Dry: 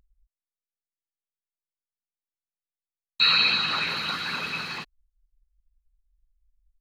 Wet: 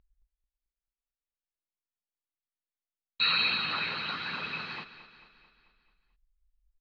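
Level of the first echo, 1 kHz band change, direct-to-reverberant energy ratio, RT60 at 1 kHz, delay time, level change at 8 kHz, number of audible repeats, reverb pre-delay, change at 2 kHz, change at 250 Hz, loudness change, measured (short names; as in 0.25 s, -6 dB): -14.0 dB, -5.0 dB, none, none, 0.22 s, under -20 dB, 5, none, -5.0 dB, -5.0 dB, -6.5 dB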